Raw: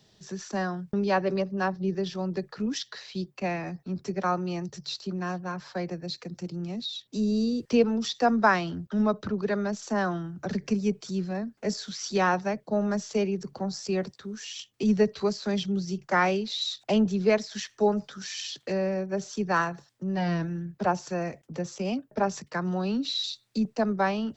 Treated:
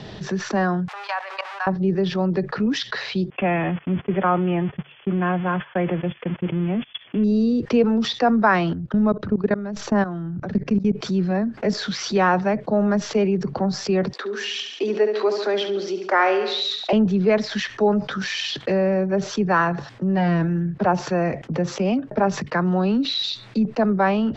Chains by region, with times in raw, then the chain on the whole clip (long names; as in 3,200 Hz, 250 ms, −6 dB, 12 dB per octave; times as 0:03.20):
0:00.88–0:01.67: converter with a step at zero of −39 dBFS + Butterworth high-pass 790 Hz + output level in coarse steps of 19 dB
0:03.30–0:07.24: spike at every zero crossing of −26.5 dBFS + linear-phase brick-wall low-pass 3,500 Hz + noise gate −42 dBFS, range −34 dB
0:08.73–0:10.96: low-shelf EQ 270 Hz +8.5 dB + output level in coarse steps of 23 dB
0:14.13–0:16.93: Butterworth high-pass 310 Hz + repeating echo 70 ms, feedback 51%, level −12 dB
whole clip: low-pass filter 2,600 Hz 12 dB per octave; envelope flattener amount 50%; level +3 dB